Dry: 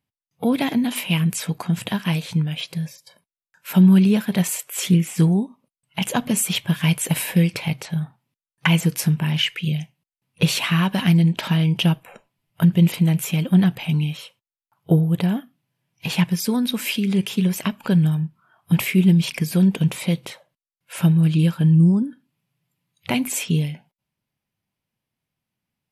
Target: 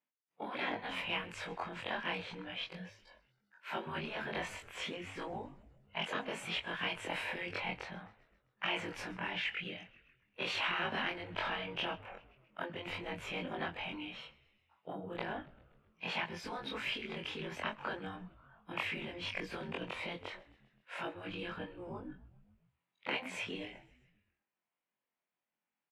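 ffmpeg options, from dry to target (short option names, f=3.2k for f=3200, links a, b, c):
-filter_complex "[0:a]afftfilt=real='re':imag='-im':win_size=2048:overlap=0.75,lowshelf=f=410:g=-11,asplit=2[a][b];[b]asoftclip=type=tanh:threshold=-27.5dB,volume=-6.5dB[c];[a][c]amix=inputs=2:normalize=0,highpass=270,lowpass=2k,asplit=2[d][e];[e]asplit=5[f][g][h][i][j];[f]adelay=131,afreqshift=-77,volume=-22.5dB[k];[g]adelay=262,afreqshift=-154,volume=-26.5dB[l];[h]adelay=393,afreqshift=-231,volume=-30.5dB[m];[i]adelay=524,afreqshift=-308,volume=-34.5dB[n];[j]adelay=655,afreqshift=-385,volume=-38.6dB[o];[k][l][m][n][o]amix=inputs=5:normalize=0[p];[d][p]amix=inputs=2:normalize=0,afftfilt=real='re*lt(hypot(re,im),0.112)':imag='im*lt(hypot(re,im),0.112)':win_size=1024:overlap=0.75,volume=-1dB"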